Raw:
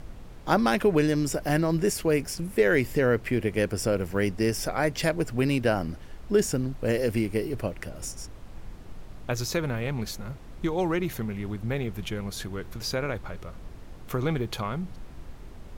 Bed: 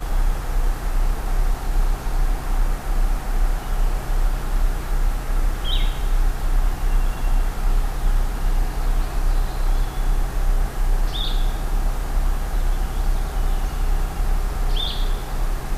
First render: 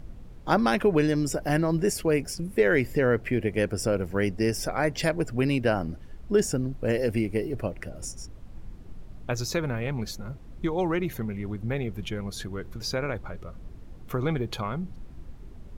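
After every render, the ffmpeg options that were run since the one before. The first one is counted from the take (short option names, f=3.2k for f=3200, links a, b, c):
-af "afftdn=nr=8:nf=-44"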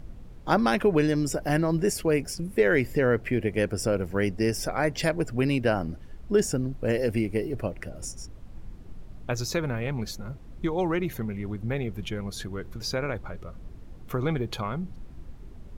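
-af anull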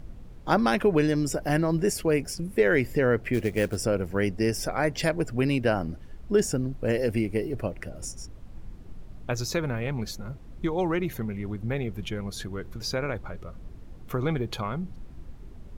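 -filter_complex "[0:a]asplit=3[a][b][c];[a]afade=t=out:st=3.33:d=0.02[d];[b]acrusher=bits=5:mode=log:mix=0:aa=0.000001,afade=t=in:st=3.33:d=0.02,afade=t=out:st=3.76:d=0.02[e];[c]afade=t=in:st=3.76:d=0.02[f];[d][e][f]amix=inputs=3:normalize=0"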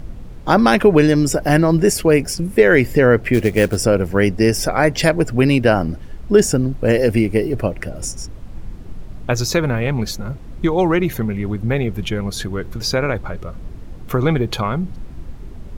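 -af "volume=10.5dB,alimiter=limit=-1dB:level=0:latency=1"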